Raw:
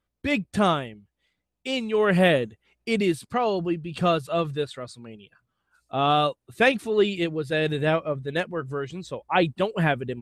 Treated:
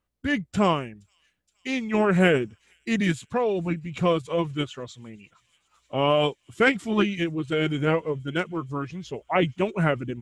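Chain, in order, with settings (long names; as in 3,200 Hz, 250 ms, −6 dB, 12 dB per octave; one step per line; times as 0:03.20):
formants moved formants −3 semitones
delay with a high-pass on its return 470 ms, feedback 83%, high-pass 5,000 Hz, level −22.5 dB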